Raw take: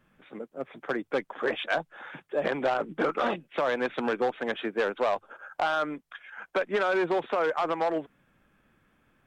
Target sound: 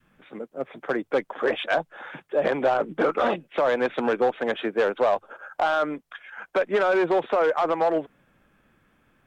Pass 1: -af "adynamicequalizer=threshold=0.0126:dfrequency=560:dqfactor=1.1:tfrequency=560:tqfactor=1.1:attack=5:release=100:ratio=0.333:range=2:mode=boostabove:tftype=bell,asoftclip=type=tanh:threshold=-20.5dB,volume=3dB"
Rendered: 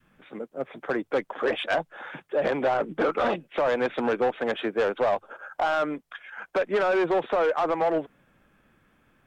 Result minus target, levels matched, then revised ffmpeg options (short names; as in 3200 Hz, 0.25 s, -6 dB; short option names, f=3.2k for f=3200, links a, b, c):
soft clip: distortion +9 dB
-af "adynamicequalizer=threshold=0.0126:dfrequency=560:dqfactor=1.1:tfrequency=560:tqfactor=1.1:attack=5:release=100:ratio=0.333:range=2:mode=boostabove:tftype=bell,asoftclip=type=tanh:threshold=-14dB,volume=3dB"